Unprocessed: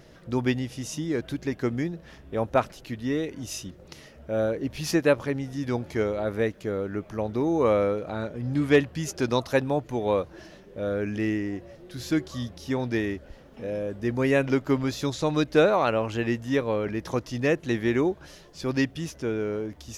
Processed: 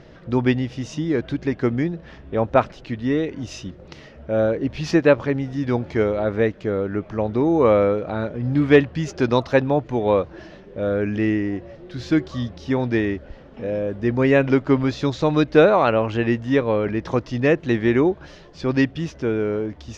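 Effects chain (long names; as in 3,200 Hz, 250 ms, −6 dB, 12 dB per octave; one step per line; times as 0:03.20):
high-frequency loss of the air 160 metres
level +6.5 dB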